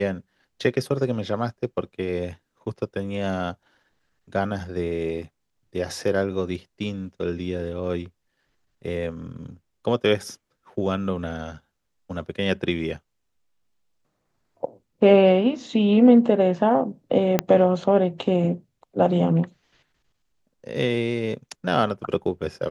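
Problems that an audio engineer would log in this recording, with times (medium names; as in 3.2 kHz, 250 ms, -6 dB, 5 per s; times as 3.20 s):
17.39 s: pop -5 dBFS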